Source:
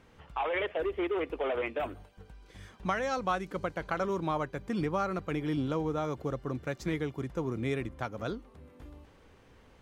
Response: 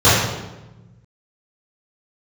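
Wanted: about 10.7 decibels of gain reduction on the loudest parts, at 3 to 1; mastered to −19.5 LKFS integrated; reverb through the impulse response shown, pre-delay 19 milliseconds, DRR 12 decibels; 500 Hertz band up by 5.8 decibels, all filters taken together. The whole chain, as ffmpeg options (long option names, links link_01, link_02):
-filter_complex "[0:a]equalizer=frequency=500:width_type=o:gain=7,acompressor=threshold=-38dB:ratio=3,asplit=2[link_01][link_02];[1:a]atrim=start_sample=2205,adelay=19[link_03];[link_02][link_03]afir=irnorm=-1:irlink=0,volume=-39.5dB[link_04];[link_01][link_04]amix=inputs=2:normalize=0,volume=19.5dB"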